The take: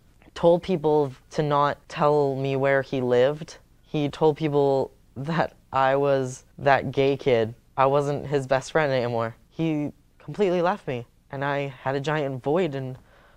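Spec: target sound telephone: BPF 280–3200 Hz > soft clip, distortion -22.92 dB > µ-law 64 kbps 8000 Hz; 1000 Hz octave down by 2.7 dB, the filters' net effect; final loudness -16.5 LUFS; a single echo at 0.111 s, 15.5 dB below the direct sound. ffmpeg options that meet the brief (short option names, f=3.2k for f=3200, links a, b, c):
-af "highpass=280,lowpass=3.2k,equalizer=f=1k:t=o:g=-3.5,aecho=1:1:111:0.168,asoftclip=threshold=-10dB,volume=10dB" -ar 8000 -c:a pcm_mulaw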